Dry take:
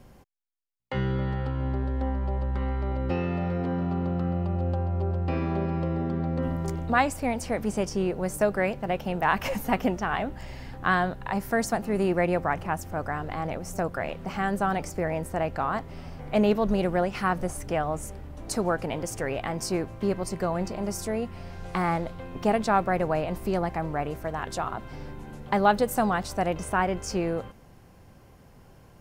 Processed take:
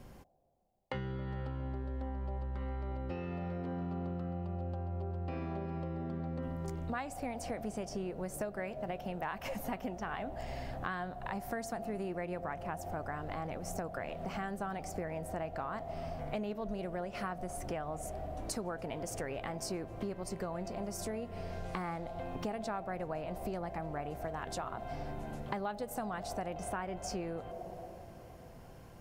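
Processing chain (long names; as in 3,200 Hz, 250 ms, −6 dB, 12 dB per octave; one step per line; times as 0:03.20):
on a send at −20 dB: low-pass with resonance 680 Hz, resonance Q 8.4 + convolution reverb RT60 3.5 s, pre-delay 18 ms
on the sum: downward compressor, threshold −35 dBFS, peak gain reduction 18.5 dB
level −1 dB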